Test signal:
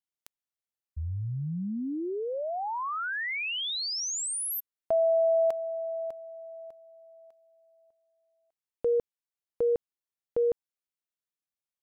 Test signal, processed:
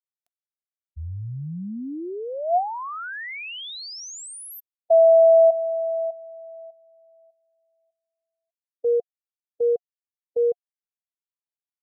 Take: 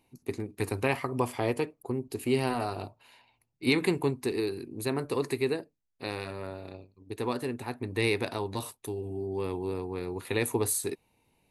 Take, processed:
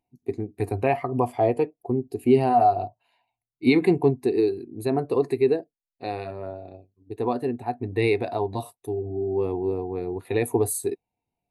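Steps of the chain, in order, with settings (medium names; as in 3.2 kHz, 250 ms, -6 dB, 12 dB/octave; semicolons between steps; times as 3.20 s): peaking EQ 710 Hz +11 dB 0.22 oct; in parallel at 0 dB: peak limiter -19.5 dBFS; on the sum: spectral contrast expander 1.5:1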